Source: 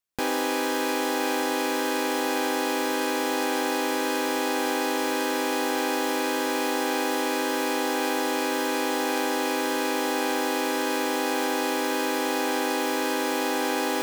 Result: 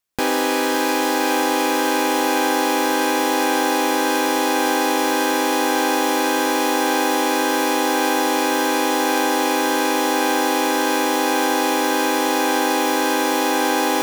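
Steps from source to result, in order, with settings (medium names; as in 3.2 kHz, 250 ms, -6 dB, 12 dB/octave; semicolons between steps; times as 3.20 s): thinning echo 560 ms, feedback 77%, high-pass 400 Hz, level -11.5 dB; trim +6.5 dB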